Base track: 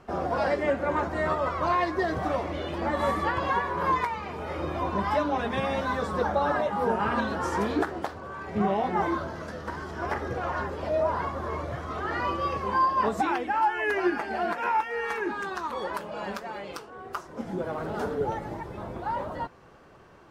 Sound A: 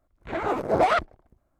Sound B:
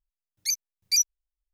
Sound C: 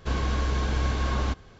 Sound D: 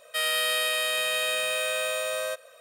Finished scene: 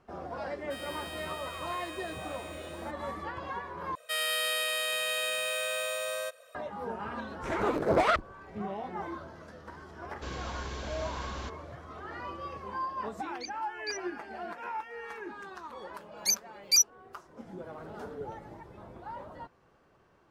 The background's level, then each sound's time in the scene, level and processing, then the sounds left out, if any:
base track −11.5 dB
0:00.56: mix in D −17 dB + running median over 3 samples
0:03.95: overwrite with D −4.5 dB
0:07.17: mix in A −2 dB + parametric band 760 Hz −6.5 dB 0.36 octaves
0:10.16: mix in C −9.5 dB + spectral tilt +1.5 dB per octave
0:12.95: mix in B −9 dB + low-pass filter 4,200 Hz 24 dB per octave
0:15.80: mix in B −0.5 dB

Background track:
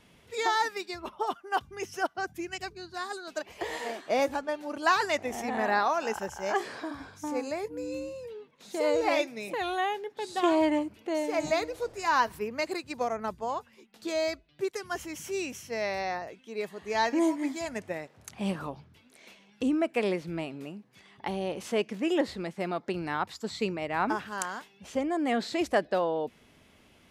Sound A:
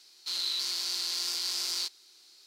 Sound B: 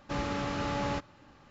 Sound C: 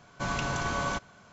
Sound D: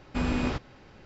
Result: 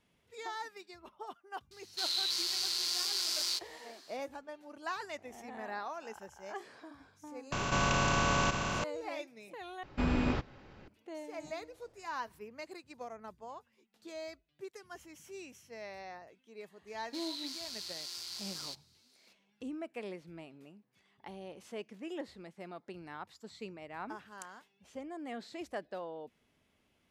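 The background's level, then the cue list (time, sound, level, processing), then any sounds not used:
background track −14.5 dB
0:01.71: mix in A −1.5 dB
0:07.52: mix in C −2.5 dB + compressor on every frequency bin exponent 0.2
0:09.83: overwrite with D −2.5 dB + high-shelf EQ 6,700 Hz −10.5 dB
0:16.87: mix in A −11 dB
not used: B

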